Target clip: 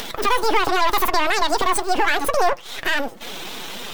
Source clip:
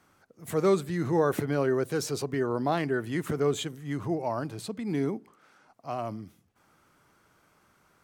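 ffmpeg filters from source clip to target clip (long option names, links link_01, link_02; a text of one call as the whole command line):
ffmpeg -i in.wav -af "aeval=exprs='if(lt(val(0),0),0.251*val(0),val(0))':channel_layout=same,asetrate=55563,aresample=44100,atempo=0.793701,flanger=delay=8.4:depth=4.2:regen=51:speed=1.8:shape=sinusoidal,acompressor=mode=upward:threshold=-34dB:ratio=2.5,asetrate=89964,aresample=44100,alimiter=level_in=26.5dB:limit=-1dB:release=50:level=0:latency=1,volume=-6dB" out.wav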